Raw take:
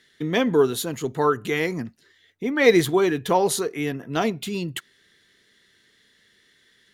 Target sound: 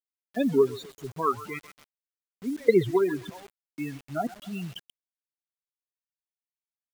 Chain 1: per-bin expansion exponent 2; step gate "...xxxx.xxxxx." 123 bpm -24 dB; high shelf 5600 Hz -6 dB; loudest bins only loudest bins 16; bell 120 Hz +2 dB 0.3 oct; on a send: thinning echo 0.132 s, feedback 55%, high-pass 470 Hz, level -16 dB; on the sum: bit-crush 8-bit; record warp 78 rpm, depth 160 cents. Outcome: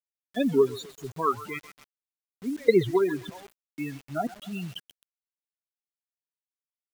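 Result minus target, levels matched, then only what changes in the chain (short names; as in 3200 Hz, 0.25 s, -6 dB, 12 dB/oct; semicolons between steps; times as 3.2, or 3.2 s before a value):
4000 Hz band +3.0 dB
change: high shelf 5600 Hz -15 dB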